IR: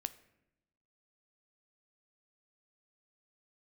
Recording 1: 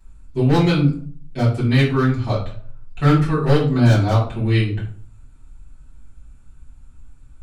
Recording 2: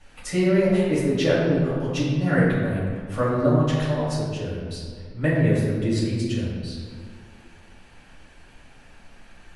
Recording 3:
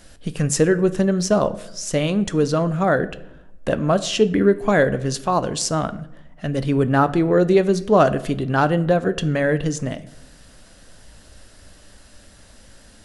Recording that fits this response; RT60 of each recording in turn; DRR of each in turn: 3; 0.50, 1.9, 0.85 seconds; −11.5, −8.5, 12.0 decibels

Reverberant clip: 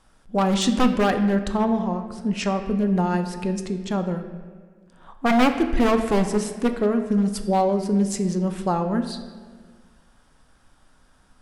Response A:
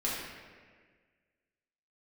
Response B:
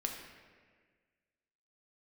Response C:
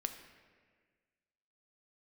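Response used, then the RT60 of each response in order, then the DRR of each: C; 1.6, 1.6, 1.6 seconds; −7.0, 1.0, 6.5 decibels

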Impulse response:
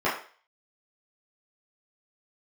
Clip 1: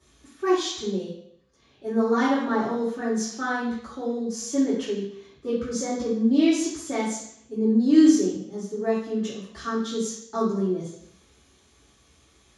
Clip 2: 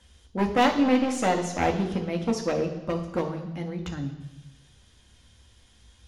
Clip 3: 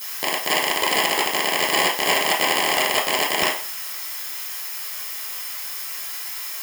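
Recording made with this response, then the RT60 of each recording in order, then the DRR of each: 3; 0.70, 1.1, 0.40 seconds; −11.0, 3.0, −10.0 decibels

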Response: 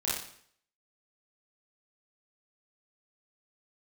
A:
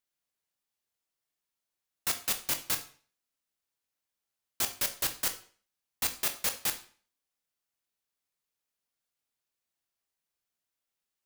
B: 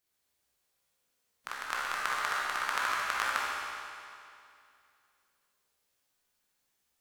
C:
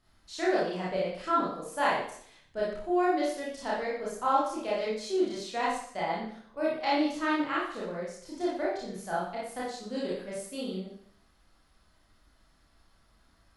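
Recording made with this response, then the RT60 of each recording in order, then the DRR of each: C; 0.45, 2.5, 0.60 seconds; 6.5, −6.5, −7.5 decibels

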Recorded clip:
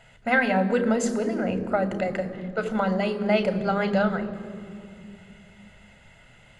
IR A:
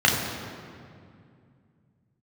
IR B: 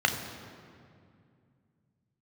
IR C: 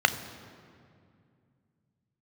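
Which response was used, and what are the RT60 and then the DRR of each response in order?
C; 2.3, 2.3, 2.3 seconds; −2.5, 4.0, 10.0 decibels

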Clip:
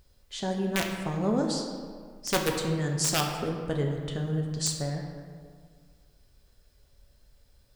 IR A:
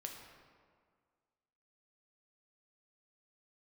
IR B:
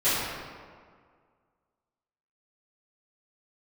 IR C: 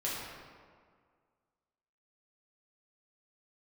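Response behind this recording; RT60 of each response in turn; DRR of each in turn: A; 1.9, 1.9, 1.9 seconds; 1.0, −17.5, −8.0 decibels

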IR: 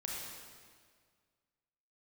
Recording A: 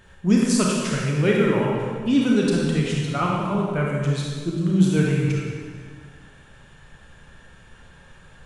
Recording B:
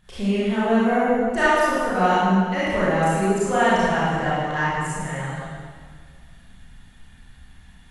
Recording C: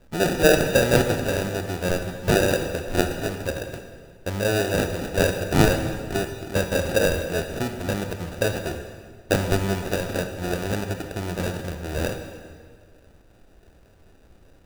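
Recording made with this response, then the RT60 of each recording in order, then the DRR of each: A; 1.8, 1.8, 1.8 seconds; −3.0, −11.0, 6.0 decibels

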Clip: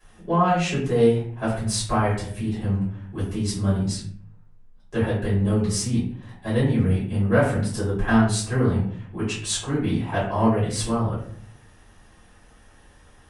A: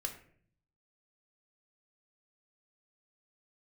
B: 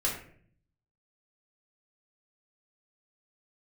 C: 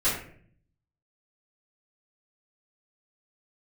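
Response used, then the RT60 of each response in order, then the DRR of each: C; 0.55, 0.55, 0.55 seconds; 3.5, −4.5, −13.5 decibels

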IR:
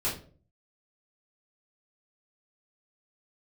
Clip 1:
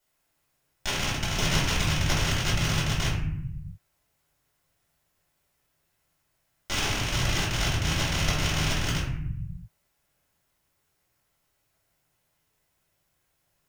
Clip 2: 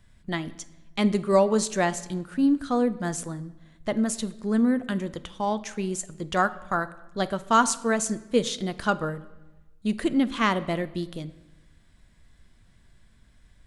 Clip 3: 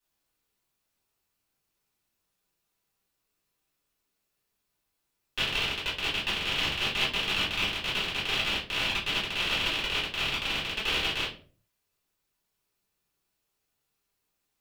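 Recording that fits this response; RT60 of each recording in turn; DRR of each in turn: 3; 0.70, 1.1, 0.45 seconds; −10.5, 13.0, −9.5 decibels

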